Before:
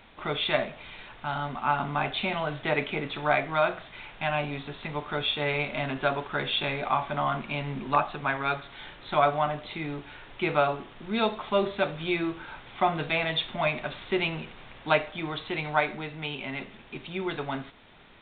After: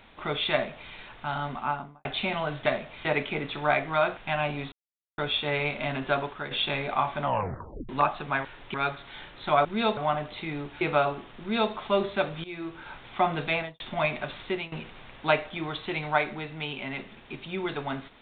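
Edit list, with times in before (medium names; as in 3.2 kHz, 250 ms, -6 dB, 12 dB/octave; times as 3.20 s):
0.53–0.92 s: copy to 2.66 s
1.52–2.05 s: studio fade out
3.78–4.11 s: delete
4.66–5.12 s: mute
6.14–6.45 s: fade out, to -9 dB
7.18 s: tape stop 0.65 s
10.14–10.43 s: move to 8.39 s
11.02–11.34 s: copy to 9.30 s
12.06–12.55 s: fade in, from -17.5 dB
13.15–13.42 s: studio fade out
14.04–14.34 s: fade out, to -17.5 dB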